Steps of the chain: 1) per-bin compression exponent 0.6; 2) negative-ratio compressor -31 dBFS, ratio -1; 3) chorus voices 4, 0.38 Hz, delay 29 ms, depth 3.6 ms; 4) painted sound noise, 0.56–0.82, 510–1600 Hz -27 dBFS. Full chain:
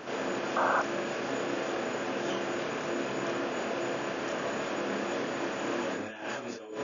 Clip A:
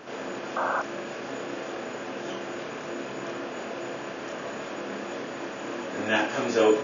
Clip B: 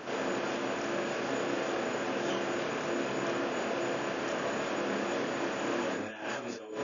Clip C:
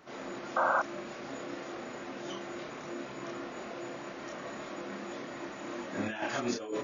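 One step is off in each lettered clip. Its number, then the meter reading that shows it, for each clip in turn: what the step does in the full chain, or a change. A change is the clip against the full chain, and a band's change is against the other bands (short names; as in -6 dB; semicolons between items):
2, crest factor change +2.5 dB; 4, 1 kHz band -2.0 dB; 1, 4 kHz band -2.0 dB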